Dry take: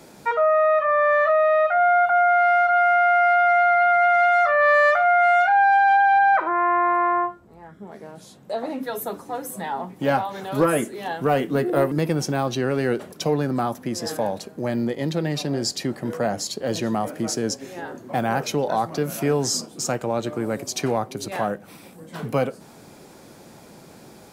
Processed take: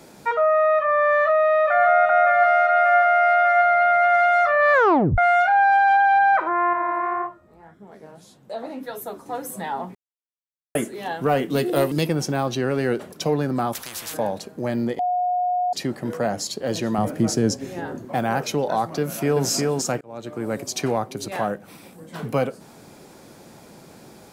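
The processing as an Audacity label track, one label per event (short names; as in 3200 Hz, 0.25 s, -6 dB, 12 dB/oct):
1.080000	1.840000	echo throw 0.59 s, feedback 65%, level -5 dB
2.530000	3.580000	brick-wall FIR high-pass 210 Hz
4.730000	4.730000	tape stop 0.45 s
6.730000	9.260000	flange 1.8 Hz, delay 5.9 ms, depth 9.5 ms, regen +54%
9.950000	10.750000	mute
11.500000	12.070000	resonant high shelf 2300 Hz +8.5 dB, Q 1.5
13.730000	14.140000	spectral compressor 10:1
14.990000	15.730000	bleep 721 Hz -19 dBFS
16.980000	18.050000	low shelf 260 Hz +11.5 dB
19.000000	19.450000	echo throw 0.36 s, feedback 15%, level -2 dB
20.010000	20.540000	fade in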